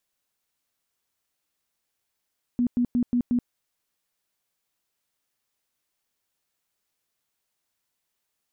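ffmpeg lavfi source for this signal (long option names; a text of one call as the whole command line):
ffmpeg -f lavfi -i "aevalsrc='0.112*sin(2*PI*243*mod(t,0.18))*lt(mod(t,0.18),19/243)':duration=0.9:sample_rate=44100" out.wav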